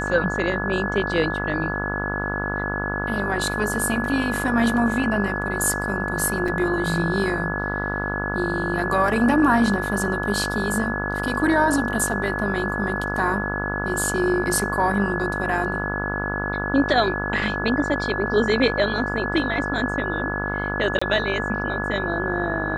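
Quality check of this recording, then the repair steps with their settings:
buzz 50 Hz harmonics 30 -28 dBFS
tone 1700 Hz -27 dBFS
6.48 gap 4.1 ms
20.99–21.02 gap 25 ms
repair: de-hum 50 Hz, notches 30; notch 1700 Hz, Q 30; interpolate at 6.48, 4.1 ms; interpolate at 20.99, 25 ms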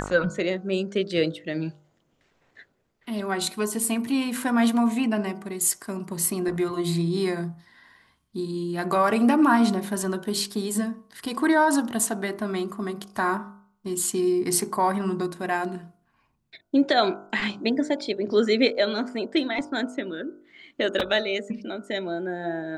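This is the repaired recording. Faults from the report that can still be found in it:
none

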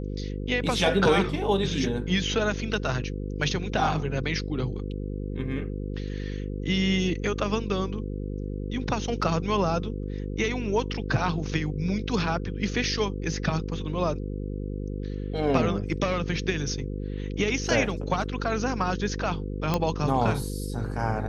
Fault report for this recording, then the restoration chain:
buzz 50 Hz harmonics 10 -32 dBFS
19.74 pop -11 dBFS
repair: de-click; de-hum 50 Hz, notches 10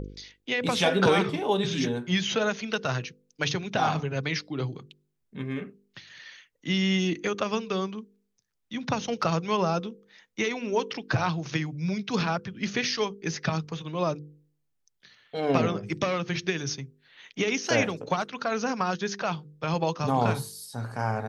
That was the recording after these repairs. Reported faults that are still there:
none

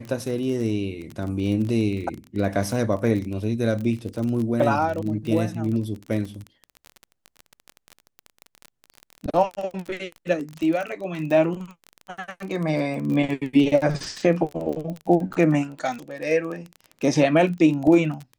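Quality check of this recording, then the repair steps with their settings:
crackle 26/s -28 dBFS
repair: de-click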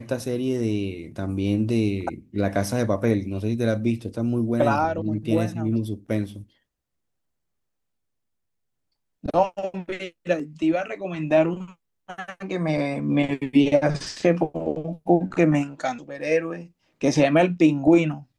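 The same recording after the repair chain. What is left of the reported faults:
none

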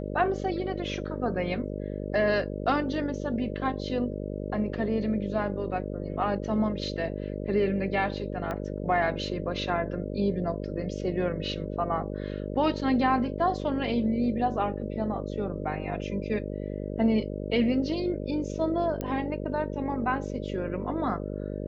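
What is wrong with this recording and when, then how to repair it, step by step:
buzz 50 Hz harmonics 12 -34 dBFS
8.51 pop -20 dBFS
19.01 pop -19 dBFS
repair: de-click; de-hum 50 Hz, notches 12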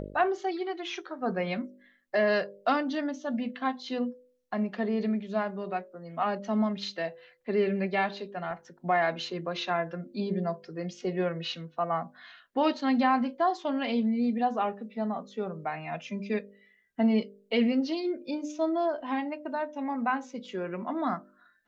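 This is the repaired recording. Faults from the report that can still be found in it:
8.51 pop

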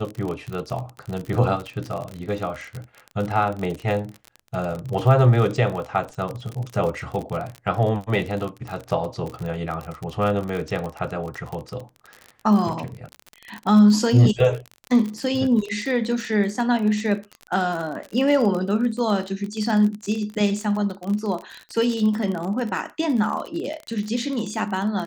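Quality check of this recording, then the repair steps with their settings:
crackle 39/s -27 dBFS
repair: de-click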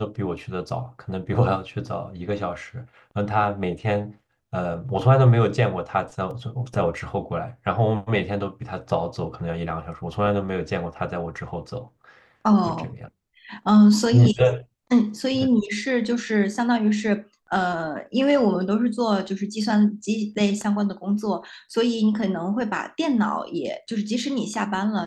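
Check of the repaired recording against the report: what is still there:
none

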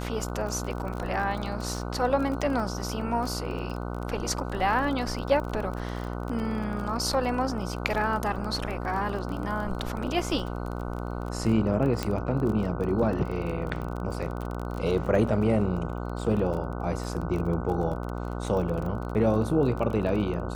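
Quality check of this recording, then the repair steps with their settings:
buzz 60 Hz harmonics 25 -33 dBFS
crackle 26/s -32 dBFS
12.03 pop -13 dBFS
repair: de-click; de-hum 60 Hz, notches 25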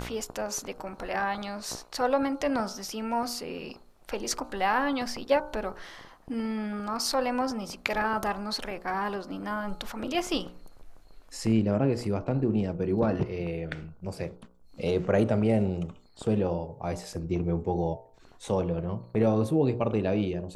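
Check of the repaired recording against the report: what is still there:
12.03 pop

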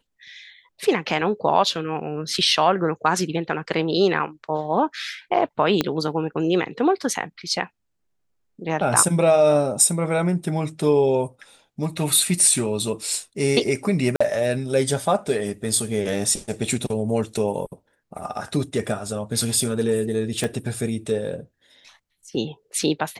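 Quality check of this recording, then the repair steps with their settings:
5.81 pop -6 dBFS
14.16–14.21 gap 45 ms
20.44 pop -12 dBFS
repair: de-click; interpolate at 14.16, 45 ms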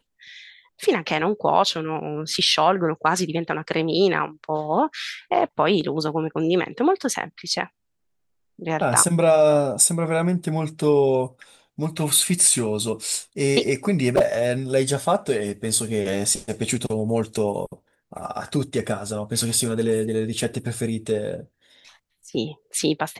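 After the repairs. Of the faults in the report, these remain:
5.81 pop
20.44 pop

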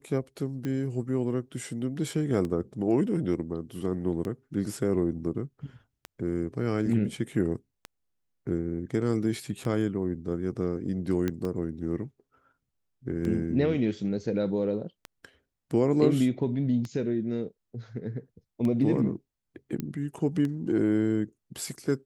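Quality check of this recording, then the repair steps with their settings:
tick 33 1/3 rpm -21 dBFS
11.28 pop -16 dBFS
19.8 pop -19 dBFS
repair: de-click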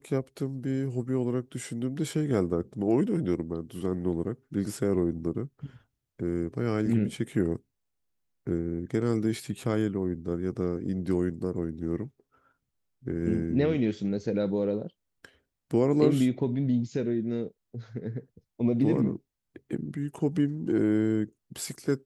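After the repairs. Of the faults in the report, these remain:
none

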